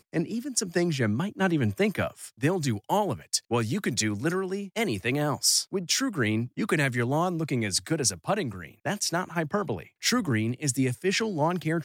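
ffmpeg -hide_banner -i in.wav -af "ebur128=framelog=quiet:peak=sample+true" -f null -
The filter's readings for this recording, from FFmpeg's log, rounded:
Integrated loudness:
  I:         -27.2 LUFS
  Threshold: -37.2 LUFS
Loudness range:
  LRA:         2.2 LU
  Threshold: -47.2 LUFS
  LRA low:   -28.1 LUFS
  LRA high:  -25.9 LUFS
Sample peak:
  Peak:      -10.3 dBFS
True peak:
  Peak:       -9.8 dBFS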